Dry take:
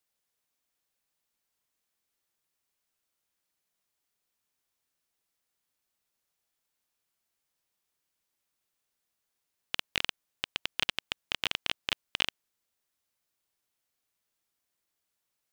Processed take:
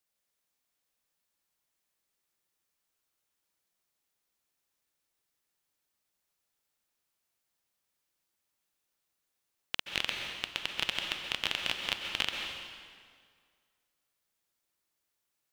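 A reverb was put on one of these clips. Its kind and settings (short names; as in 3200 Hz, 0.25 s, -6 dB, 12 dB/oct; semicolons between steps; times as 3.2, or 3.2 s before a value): plate-style reverb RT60 1.9 s, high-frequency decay 0.85×, pre-delay 0.115 s, DRR 2.5 dB; gain -1.5 dB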